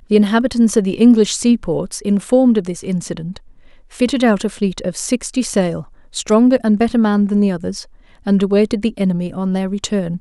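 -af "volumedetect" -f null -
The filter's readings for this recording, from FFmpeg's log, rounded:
mean_volume: -15.9 dB
max_volume: -1.3 dB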